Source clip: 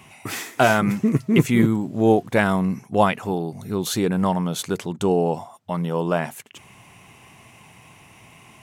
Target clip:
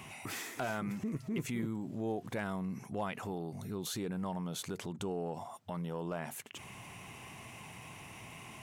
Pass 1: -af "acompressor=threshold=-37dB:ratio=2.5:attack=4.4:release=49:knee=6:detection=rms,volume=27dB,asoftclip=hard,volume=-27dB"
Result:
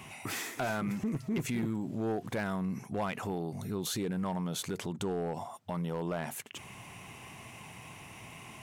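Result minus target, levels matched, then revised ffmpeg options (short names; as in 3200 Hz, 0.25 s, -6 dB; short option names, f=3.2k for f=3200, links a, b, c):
compressor: peak gain reduction -4 dB
-af "acompressor=threshold=-44dB:ratio=2.5:attack=4.4:release=49:knee=6:detection=rms,volume=27dB,asoftclip=hard,volume=-27dB"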